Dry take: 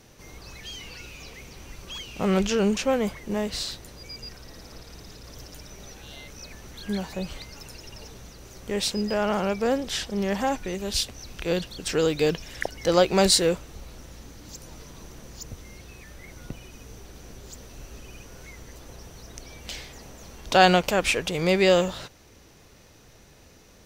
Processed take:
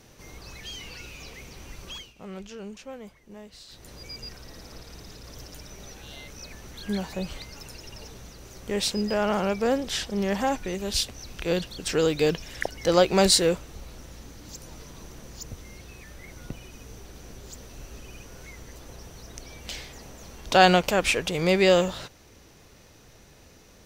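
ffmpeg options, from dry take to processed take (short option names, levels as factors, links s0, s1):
-filter_complex "[0:a]asplit=3[s0][s1][s2];[s0]atrim=end=2.14,asetpts=PTS-STARTPTS,afade=t=out:st=1.89:d=0.25:silence=0.141254[s3];[s1]atrim=start=2.14:end=3.68,asetpts=PTS-STARTPTS,volume=0.141[s4];[s2]atrim=start=3.68,asetpts=PTS-STARTPTS,afade=t=in:d=0.25:silence=0.141254[s5];[s3][s4][s5]concat=n=3:v=0:a=1"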